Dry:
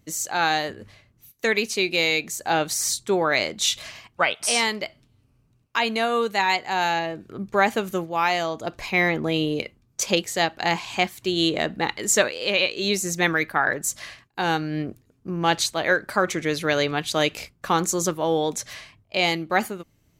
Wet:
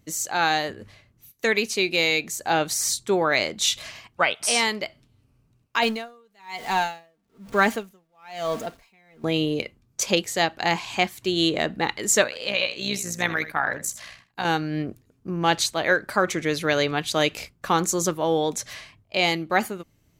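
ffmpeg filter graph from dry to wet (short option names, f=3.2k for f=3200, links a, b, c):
-filter_complex "[0:a]asettb=1/sr,asplit=3[a][b][c];[a]atrim=end=5.824[d];[b]atrim=start=5.82:end=9.24,asetpts=PTS-STARTPTS,afade=t=in:d=0.004:c=qsin,afade=t=out:st=3.416:d=0.004:c=qsin,aeval=exprs='val(0)+0.5*0.0224*sgn(val(0))':c=same,aecho=1:1:4.4:0.49,atrim=end_sample=150822,aeval=exprs='val(0)*pow(10,-39*(0.5-0.5*cos(2*PI*1.1*n/s))/20)':c=same[e];[c]atrim=start=9.236[f];[d][e]acrossfade=d=0.004:c1=hsin:c2=qsin[g];[g][f]acrossfade=d=0.004:c1=qsin:c2=hsin,asettb=1/sr,asplit=3[h][i][j];[h]atrim=end=12.244[k];[i]atrim=start=12.24:end=14.45,asetpts=PTS-STARTPTS,afade=t=in:d=0.004:c=qsin,afade=t=out:st=2.206:d=0.004:c=qsin,equalizer=f=380:t=o:w=0.38:g=-9.5,tremolo=f=61:d=0.621,aecho=1:1:78:0.2,atrim=end_sample=97461[l];[j]atrim=start=14.446[m];[k][l]acrossfade=d=0.004:c1=hsin:c2=qsin[n];[n][m]acrossfade=d=0.004:c1=qsin:c2=hsin"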